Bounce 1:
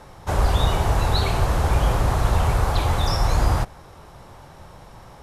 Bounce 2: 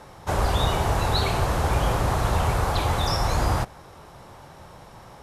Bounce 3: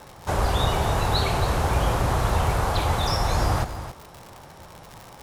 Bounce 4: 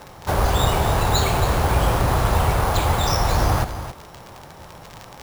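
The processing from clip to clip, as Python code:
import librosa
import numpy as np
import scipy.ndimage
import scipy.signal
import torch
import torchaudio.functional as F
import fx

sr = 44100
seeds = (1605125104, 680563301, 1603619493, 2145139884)

y1 = fx.low_shelf(x, sr, hz=62.0, db=-9.5)
y2 = fx.dmg_crackle(y1, sr, seeds[0], per_s=120.0, level_db=-31.0)
y2 = y2 + 10.0 ** (-11.5 / 20.0) * np.pad(y2, (int(273 * sr / 1000.0), 0))[:len(y2)]
y3 = np.repeat(y2[::4], 4)[:len(y2)]
y3 = y3 * librosa.db_to_amplitude(3.5)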